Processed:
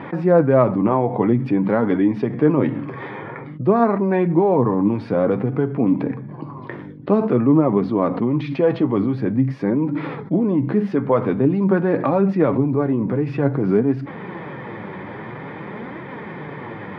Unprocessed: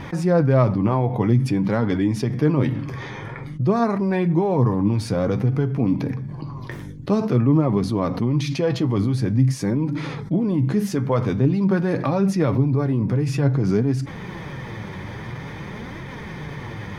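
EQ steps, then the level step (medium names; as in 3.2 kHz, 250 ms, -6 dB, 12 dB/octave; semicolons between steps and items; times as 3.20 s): high-pass 240 Hz 12 dB/octave; distance through air 400 m; treble shelf 3.8 kHz -9 dB; +6.5 dB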